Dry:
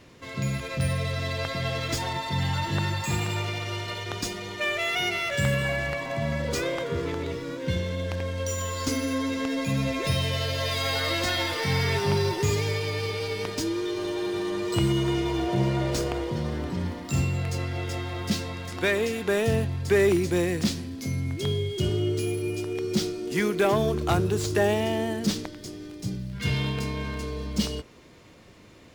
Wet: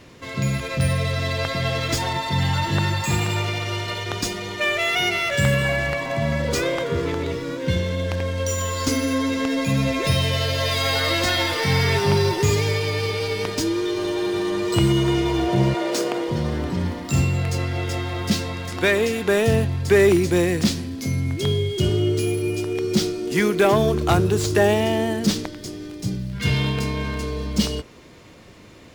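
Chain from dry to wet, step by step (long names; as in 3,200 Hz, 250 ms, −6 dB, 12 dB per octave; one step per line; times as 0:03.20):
0:15.73–0:16.28: high-pass filter 340 Hz → 150 Hz 24 dB per octave
level +5.5 dB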